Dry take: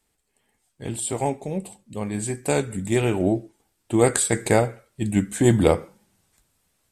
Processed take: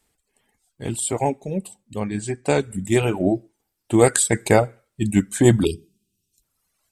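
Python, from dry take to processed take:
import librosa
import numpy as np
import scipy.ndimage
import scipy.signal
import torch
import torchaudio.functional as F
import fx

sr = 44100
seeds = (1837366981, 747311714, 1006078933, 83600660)

y = fx.spec_erase(x, sr, start_s=5.65, length_s=0.78, low_hz=440.0, high_hz=2400.0)
y = fx.dereverb_blind(y, sr, rt60_s=1.5)
y = fx.bessel_lowpass(y, sr, hz=5700.0, order=4, at=(2.0, 2.6))
y = F.gain(torch.from_numpy(y), 3.5).numpy()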